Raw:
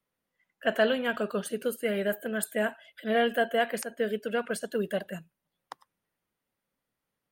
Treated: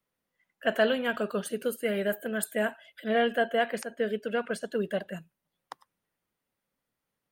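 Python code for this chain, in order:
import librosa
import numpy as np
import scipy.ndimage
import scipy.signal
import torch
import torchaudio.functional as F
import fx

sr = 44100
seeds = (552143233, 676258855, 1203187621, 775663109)

y = fx.high_shelf(x, sr, hz=9100.0, db=-11.5, at=(3.08, 5.17))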